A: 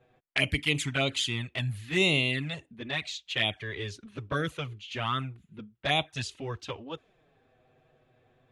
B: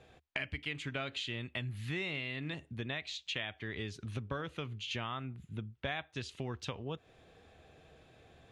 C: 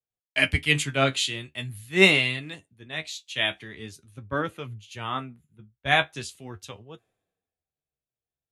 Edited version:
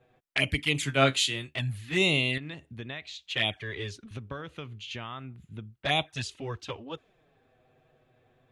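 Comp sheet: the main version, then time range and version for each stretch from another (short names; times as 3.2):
A
0.83–1.55 from C
2.38–3.26 from B
4.11–5.76 from B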